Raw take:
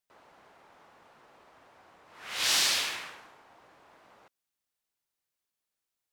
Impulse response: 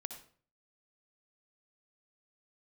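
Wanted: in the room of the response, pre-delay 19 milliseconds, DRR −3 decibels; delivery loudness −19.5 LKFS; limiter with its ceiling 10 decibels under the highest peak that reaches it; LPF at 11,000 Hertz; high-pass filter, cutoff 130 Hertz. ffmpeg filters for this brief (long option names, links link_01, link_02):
-filter_complex "[0:a]highpass=130,lowpass=11000,alimiter=limit=-24dB:level=0:latency=1,asplit=2[link_01][link_02];[1:a]atrim=start_sample=2205,adelay=19[link_03];[link_02][link_03]afir=irnorm=-1:irlink=0,volume=5.5dB[link_04];[link_01][link_04]amix=inputs=2:normalize=0,volume=9.5dB"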